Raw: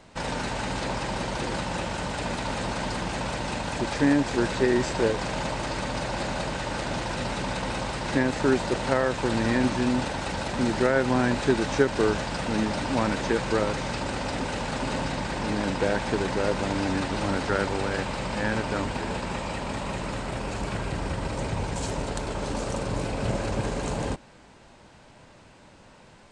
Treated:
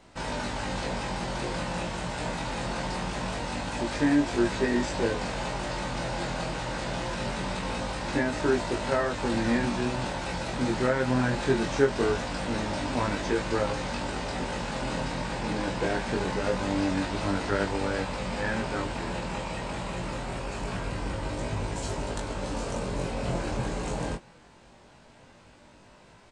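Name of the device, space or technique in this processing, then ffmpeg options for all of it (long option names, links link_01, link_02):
double-tracked vocal: -filter_complex "[0:a]asplit=2[link_01][link_02];[link_02]adelay=17,volume=-8dB[link_03];[link_01][link_03]amix=inputs=2:normalize=0,flanger=delay=20:depth=3.3:speed=0.23"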